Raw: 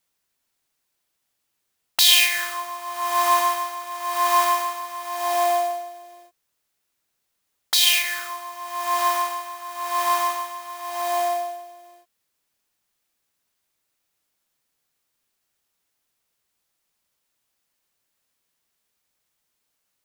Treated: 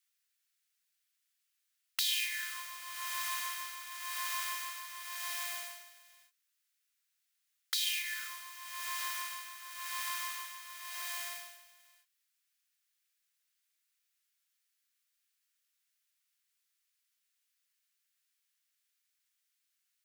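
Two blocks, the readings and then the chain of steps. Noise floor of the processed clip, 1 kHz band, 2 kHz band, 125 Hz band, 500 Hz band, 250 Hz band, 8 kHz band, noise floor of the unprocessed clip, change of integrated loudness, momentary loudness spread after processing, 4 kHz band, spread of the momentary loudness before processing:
-82 dBFS, -22.0 dB, -12.5 dB, n/a, -35.0 dB, under -40 dB, -12.5 dB, -76 dBFS, -15.5 dB, 13 LU, -15.0 dB, 16 LU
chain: inverse Chebyshev high-pass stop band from 330 Hz, stop band 70 dB; compressor 2.5:1, threshold -31 dBFS, peak gain reduction 13 dB; gain -5 dB

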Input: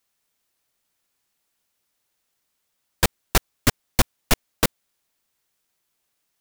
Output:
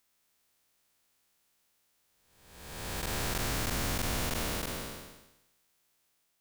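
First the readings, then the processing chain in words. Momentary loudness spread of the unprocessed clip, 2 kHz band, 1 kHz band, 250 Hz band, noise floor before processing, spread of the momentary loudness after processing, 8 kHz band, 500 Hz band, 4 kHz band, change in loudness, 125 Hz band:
3 LU, -8.5 dB, -8.5 dB, -9.0 dB, -75 dBFS, 15 LU, -8.5 dB, -9.0 dB, -8.5 dB, -9.5 dB, -8.0 dB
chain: time blur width 0.621 s; gain +3 dB

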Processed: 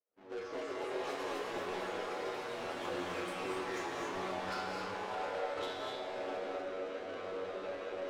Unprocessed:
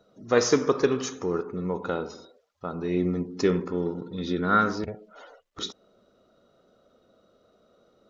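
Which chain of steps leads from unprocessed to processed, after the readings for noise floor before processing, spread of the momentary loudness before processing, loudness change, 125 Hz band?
-65 dBFS, 14 LU, -12.5 dB, -20.5 dB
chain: half-waves squared off; recorder AGC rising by 39 dB/s; expander -41 dBFS; LPF 2700 Hz 12 dB/oct; resonant low shelf 250 Hz -13.5 dB, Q 1.5; reverse; compressor 4:1, threshold -28 dBFS, peak gain reduction 16.5 dB; reverse; resonator 94 Hz, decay 0.71 s, harmonics all, mix 90%; soft clip -39 dBFS, distortion -13 dB; flange 0.39 Hz, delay 9.3 ms, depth 5.7 ms, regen +48%; echoes that change speed 0.305 s, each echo +5 st, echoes 3; non-linear reverb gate 0.28 s rising, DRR 1 dB; gain +6 dB

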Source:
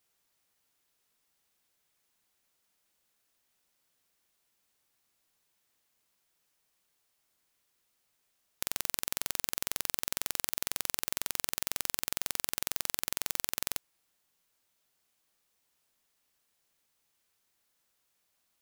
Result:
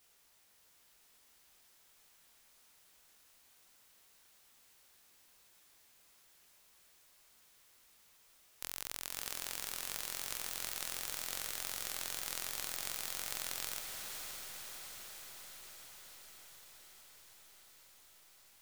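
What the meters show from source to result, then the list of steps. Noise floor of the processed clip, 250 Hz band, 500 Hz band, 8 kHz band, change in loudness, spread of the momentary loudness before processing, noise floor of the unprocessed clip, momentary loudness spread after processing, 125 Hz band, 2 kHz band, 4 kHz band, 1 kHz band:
-67 dBFS, -8.5 dB, -5.5 dB, -5.0 dB, -7.0 dB, 1 LU, -77 dBFS, 19 LU, -7.0 dB, -4.0 dB, -4.0 dB, -4.5 dB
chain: chorus 2.7 Hz, delay 17 ms, depth 7.1 ms; low shelf 81 Hz +11.5 dB; limiter -26 dBFS, peak gain reduction 18.5 dB; low shelf 280 Hz -8 dB; diffused feedback echo 0.565 s, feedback 71%, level -4.5 dB; gain +12 dB

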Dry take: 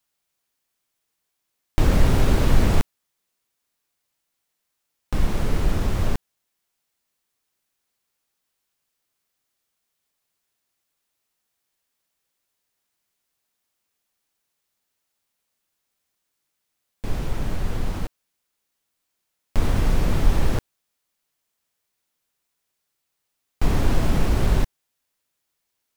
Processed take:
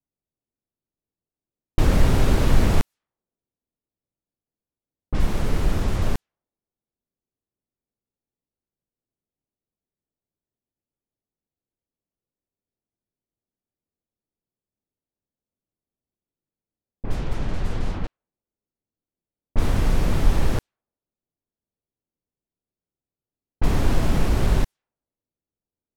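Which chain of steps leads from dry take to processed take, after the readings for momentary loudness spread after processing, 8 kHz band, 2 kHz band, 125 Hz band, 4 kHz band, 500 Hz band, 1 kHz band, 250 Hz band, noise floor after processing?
13 LU, -0.5 dB, 0.0 dB, 0.0 dB, 0.0 dB, 0.0 dB, 0.0 dB, 0.0 dB, under -85 dBFS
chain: low-pass opened by the level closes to 380 Hz, open at -16 dBFS

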